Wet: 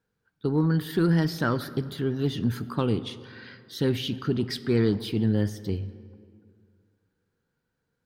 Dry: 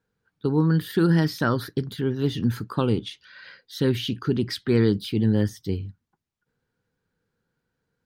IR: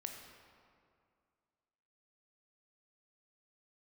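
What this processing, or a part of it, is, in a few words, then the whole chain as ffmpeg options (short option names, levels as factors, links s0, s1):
saturated reverb return: -filter_complex "[0:a]asplit=2[s0][s1];[1:a]atrim=start_sample=2205[s2];[s1][s2]afir=irnorm=-1:irlink=0,asoftclip=type=tanh:threshold=0.0708,volume=0.631[s3];[s0][s3]amix=inputs=2:normalize=0,volume=0.596"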